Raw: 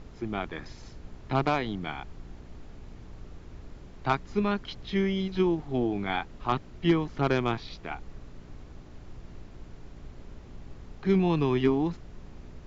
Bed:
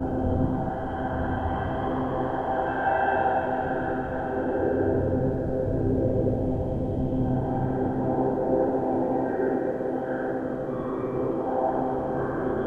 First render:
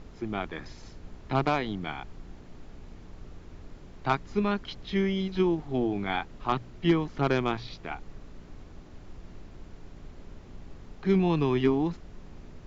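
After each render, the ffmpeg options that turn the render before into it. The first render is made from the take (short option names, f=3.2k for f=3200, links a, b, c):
-af "bandreject=f=60:t=h:w=4,bandreject=f=120:t=h:w=4"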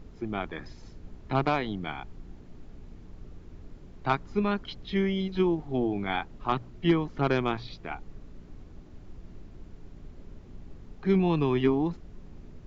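-af "afftdn=nr=6:nf=-48"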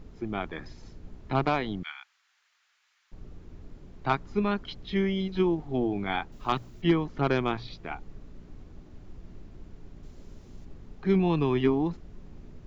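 -filter_complex "[0:a]asettb=1/sr,asplit=3[a][b][c];[a]atrim=end=1.834[d];[b]atrim=start=1.83:end=3.12,asetpts=PTS-STARTPTS,afade=t=in:d=0.004:c=qsin,afade=t=out:st=1.286:d=0.004:c=qsin,highpass=f=1.4k:w=0.5412,highpass=f=1.4k:w=1.3066[e];[c]atrim=start=3.116[f];[d][e]acrossfade=d=0.004:c1=hsin:c2=qsin[g];[g][f]acrossfade=d=0.004:c1=qsin:c2=hsin,asettb=1/sr,asplit=3[h][i][j];[h]atrim=end=6.324[k];[i]atrim=start=6.32:end=6.82,asetpts=PTS-STARTPTS,afade=t=in:d=0.004:c=qsin,afade=t=out:st=0.496:d=0.004:c=qsin,aemphasis=mode=production:type=75fm[l];[j]atrim=start=6.816[m];[k][l]acrossfade=d=0.004:c1=hsin:c2=qsin[n];[n][m]acrossfade=d=0.004:c1=qsin:c2=hsin,asettb=1/sr,asplit=3[o][p][q];[o]atrim=end=10.034[r];[p]atrim=start=10.03:end=10.65,asetpts=PTS-STARTPTS,afade=t=in:d=0.004:c=qsin,afade=t=out:st=0.616:d=0.004:c=qsin,bass=f=250:g=-1,treble=f=4k:g=10[s];[q]atrim=start=10.646[t];[r][s]acrossfade=d=0.004:c1=hsin:c2=qsin[u];[u][t]acrossfade=d=0.004:c1=qsin:c2=hsin"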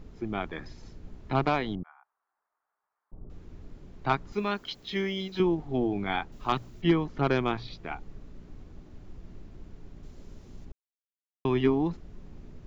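-filter_complex "[0:a]asettb=1/sr,asplit=3[a][b][c];[a]atrim=end=1.754[d];[b]atrim=start=1.75:end=3.3,asetpts=PTS-STARTPTS,afade=t=in:d=0.004:c=qsin,afade=t=out:st=1.546:d=0.004:c=qsin,lowpass=f=1k:w=0.5412,lowpass=f=1k:w=1.3066[e];[c]atrim=start=3.296[f];[d][e]acrossfade=d=0.004:c1=hsin:c2=qsin[g];[g][f]acrossfade=d=0.004:c1=qsin:c2=hsin,asettb=1/sr,asplit=3[h][i][j];[h]atrim=end=4.324[k];[i]atrim=start=4.32:end=5.4,asetpts=PTS-STARTPTS,afade=t=in:d=0.004:c=qsin,afade=t=out:st=1.076:d=0.004:c=qsin,aemphasis=mode=production:type=bsi[l];[j]atrim=start=5.396[m];[k][l]acrossfade=d=0.004:c1=hsin:c2=qsin[n];[n][m]acrossfade=d=0.004:c1=qsin:c2=hsin,asplit=3[o][p][q];[o]atrim=end=10.72,asetpts=PTS-STARTPTS,afade=t=out:st=10.716:d=0.004:c=hsin[r];[p]atrim=start=10.72:end=11.45,asetpts=PTS-STARTPTS,volume=0[s];[q]atrim=start=11.45,asetpts=PTS-STARTPTS,afade=t=in:d=0.004:c=hsin[t];[r][s][t]concat=n=3:v=0:a=1"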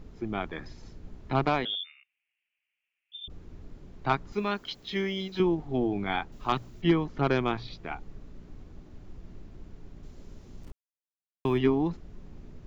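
-filter_complex "[0:a]asettb=1/sr,asplit=3[a][b][c];[a]atrim=end=1.654[d];[b]atrim=start=1.65:end=3.28,asetpts=PTS-STARTPTS,afade=t=in:d=0.004:c=qsin,afade=t=out:st=1.626:d=0.004:c=qsin,lowpass=f=3.1k:t=q:w=0.5098,lowpass=f=3.1k:t=q:w=0.6013,lowpass=f=3.1k:t=q:w=0.9,lowpass=f=3.1k:t=q:w=2.563,afreqshift=-3600[e];[c]atrim=start=3.276[f];[d][e]acrossfade=d=0.004:c1=hsin:c2=qsin[g];[g][f]acrossfade=d=0.004:c1=qsin:c2=hsin,asettb=1/sr,asplit=3[h][i][j];[h]atrim=end=10.624[k];[i]atrim=start=10.62:end=11.58,asetpts=PTS-STARTPTS,afade=t=in:d=0.004:c=qsin,afade=t=out:st=0.956:d=0.004:c=qsin,aeval=exprs='val(0)*gte(abs(val(0)),0.00376)':c=same[l];[j]atrim=start=11.576[m];[k][l]acrossfade=d=0.004:c1=hsin:c2=qsin[n];[n][m]acrossfade=d=0.004:c1=qsin:c2=hsin"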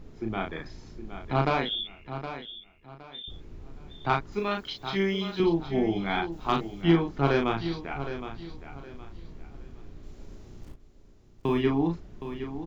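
-filter_complex "[0:a]asplit=2[a][b];[b]adelay=36,volume=-4dB[c];[a][c]amix=inputs=2:normalize=0,aecho=1:1:766|1532|2298:0.282|0.0789|0.0221"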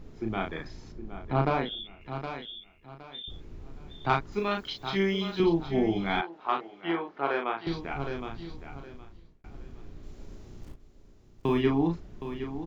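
-filter_complex "[0:a]asettb=1/sr,asplit=3[a][b][c];[a]atrim=end=0.924[d];[b]atrim=start=0.92:end=2.01,asetpts=PTS-STARTPTS,afade=t=in:d=0.004:c=qsin,afade=t=out:st=1.086:d=0.004:c=qsin,highshelf=f=2.2k:g=-9.5[e];[c]atrim=start=2.006[f];[d][e]acrossfade=d=0.004:c1=hsin:c2=qsin[g];[g][f]acrossfade=d=0.004:c1=qsin:c2=hsin,asettb=1/sr,asplit=3[h][i][j];[h]atrim=end=6.214[k];[i]atrim=start=6.21:end=7.67,asetpts=PTS-STARTPTS,afade=t=in:d=0.004:c=qsin,afade=t=out:st=1.456:d=0.004:c=qsin,highpass=530,lowpass=2.3k[l];[j]atrim=start=7.666[m];[k][l]acrossfade=d=0.004:c1=hsin:c2=qsin[n];[n][m]acrossfade=d=0.004:c1=qsin:c2=hsin,asplit=2[o][p];[o]atrim=end=9.44,asetpts=PTS-STARTPTS,afade=t=out:st=8.77:d=0.67[q];[p]atrim=start=9.44,asetpts=PTS-STARTPTS,afade=t=in:d=0.004:c=hsin[r];[q][r]concat=n=2:v=0:a=1"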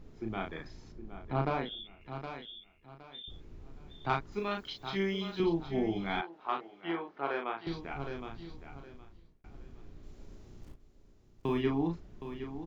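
-af "volume=-5.5dB"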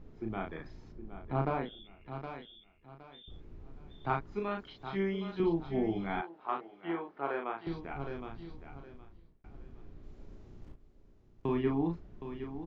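-filter_complex "[0:a]aemphasis=mode=reproduction:type=75kf,acrossover=split=2700[a][b];[b]acompressor=threshold=-56dB:ratio=4:attack=1:release=60[c];[a][c]amix=inputs=2:normalize=0"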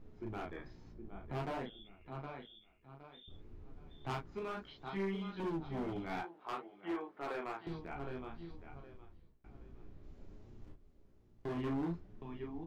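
-af "volume=31dB,asoftclip=hard,volume=-31dB,flanger=delay=9:depth=8.7:regen=-22:speed=0.57:shape=sinusoidal"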